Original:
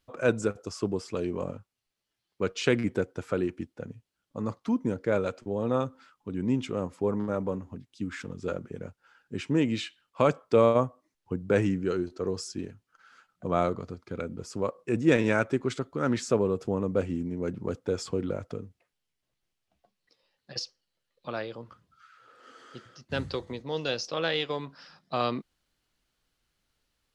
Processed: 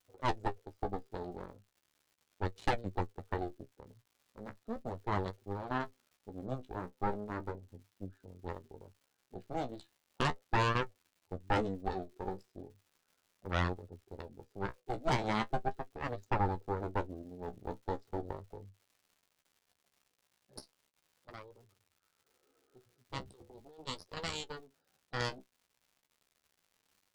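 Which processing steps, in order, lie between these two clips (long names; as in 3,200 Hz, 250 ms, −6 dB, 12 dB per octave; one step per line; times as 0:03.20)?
adaptive Wiener filter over 41 samples
thirty-one-band graphic EQ 100 Hz +10 dB, 160 Hz −9 dB, 400 Hz +10 dB, 800 Hz +11 dB, 1,250 Hz +4 dB, 2,500 Hz −8 dB, 4,000 Hz +11 dB
0:23.33–0:23.87: compressor whose output falls as the input rises −37 dBFS, ratio −1
harmonic generator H 3 −6 dB, 6 −6 dB, 8 −18 dB, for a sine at −5.5 dBFS
surface crackle 170 per second −44 dBFS
flanger 0.37 Hz, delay 9.9 ms, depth 6.8 ms, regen +34%
level −8.5 dB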